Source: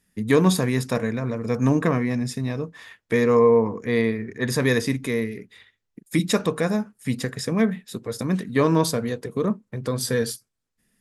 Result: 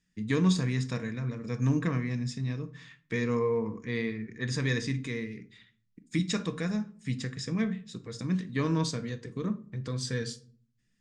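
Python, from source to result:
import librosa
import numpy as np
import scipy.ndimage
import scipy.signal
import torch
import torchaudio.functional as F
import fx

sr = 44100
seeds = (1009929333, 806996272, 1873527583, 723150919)

y = scipy.signal.sosfilt(scipy.signal.butter(6, 7600.0, 'lowpass', fs=sr, output='sos'), x)
y = fx.peak_eq(y, sr, hz=650.0, db=-11.5, octaves=1.6)
y = fx.room_shoebox(y, sr, seeds[0], volume_m3=380.0, walls='furnished', distance_m=0.61)
y = F.gain(torch.from_numpy(y), -6.0).numpy()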